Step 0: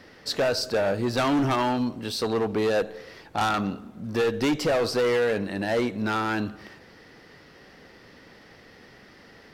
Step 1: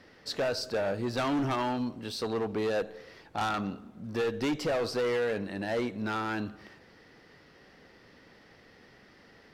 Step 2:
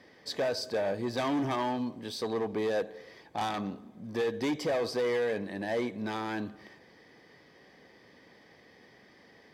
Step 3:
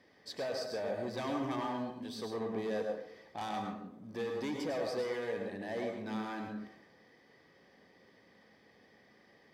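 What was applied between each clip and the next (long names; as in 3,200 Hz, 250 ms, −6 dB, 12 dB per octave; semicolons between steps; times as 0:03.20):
high-shelf EQ 8,900 Hz −4.5 dB; level −6 dB
notch comb filter 1,400 Hz
dense smooth reverb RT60 0.62 s, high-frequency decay 0.5×, pre-delay 90 ms, DRR 2 dB; level −8 dB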